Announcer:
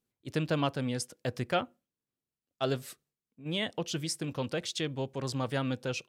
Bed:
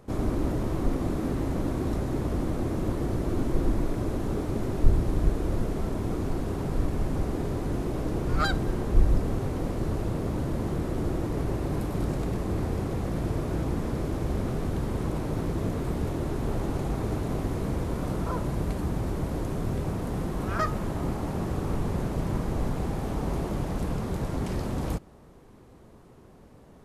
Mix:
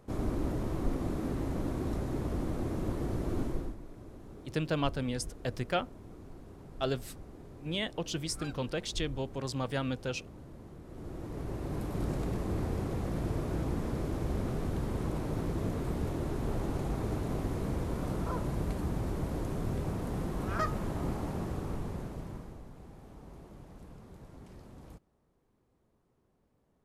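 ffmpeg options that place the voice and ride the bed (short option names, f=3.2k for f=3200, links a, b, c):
-filter_complex "[0:a]adelay=4200,volume=-1.5dB[a];[1:a]volume=10dB,afade=t=out:st=3.41:d=0.35:silence=0.188365,afade=t=in:st=10.84:d=1.29:silence=0.16788,afade=t=out:st=21.17:d=1.46:silence=0.149624[b];[a][b]amix=inputs=2:normalize=0"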